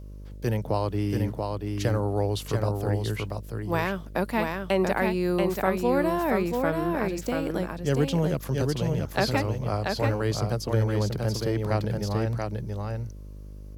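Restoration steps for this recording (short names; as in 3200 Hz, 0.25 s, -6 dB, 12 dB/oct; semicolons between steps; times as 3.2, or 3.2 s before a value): de-hum 50.2 Hz, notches 12; inverse comb 0.684 s -4 dB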